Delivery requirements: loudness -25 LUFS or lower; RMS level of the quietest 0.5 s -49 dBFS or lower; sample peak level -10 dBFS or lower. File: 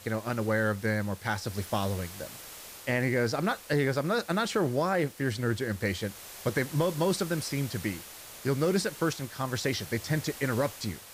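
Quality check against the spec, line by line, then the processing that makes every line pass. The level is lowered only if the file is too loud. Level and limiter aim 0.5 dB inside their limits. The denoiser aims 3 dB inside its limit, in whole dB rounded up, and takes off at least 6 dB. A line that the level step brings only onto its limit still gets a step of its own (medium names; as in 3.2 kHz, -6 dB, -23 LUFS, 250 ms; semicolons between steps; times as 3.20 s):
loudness -30.0 LUFS: pass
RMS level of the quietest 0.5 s -46 dBFS: fail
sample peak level -15.0 dBFS: pass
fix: noise reduction 6 dB, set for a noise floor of -46 dBFS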